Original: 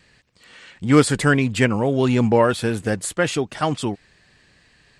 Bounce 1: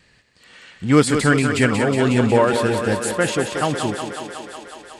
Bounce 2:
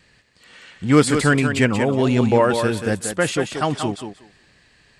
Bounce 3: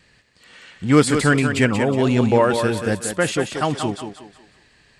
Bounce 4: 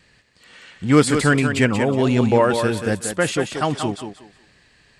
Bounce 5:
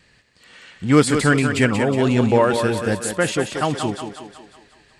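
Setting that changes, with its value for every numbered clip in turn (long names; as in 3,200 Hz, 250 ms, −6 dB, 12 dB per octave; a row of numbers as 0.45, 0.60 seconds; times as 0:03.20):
feedback echo with a high-pass in the loop, feedback: 78, 16, 36, 24, 53%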